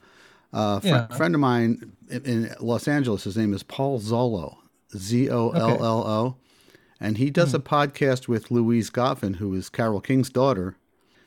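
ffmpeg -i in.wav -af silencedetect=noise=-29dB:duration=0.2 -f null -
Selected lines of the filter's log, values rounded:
silence_start: 0.00
silence_end: 0.54 | silence_duration: 0.54
silence_start: 1.83
silence_end: 2.12 | silence_duration: 0.28
silence_start: 4.48
silence_end: 4.95 | silence_duration: 0.47
silence_start: 6.31
silence_end: 7.02 | silence_duration: 0.71
silence_start: 10.69
silence_end: 11.26 | silence_duration: 0.57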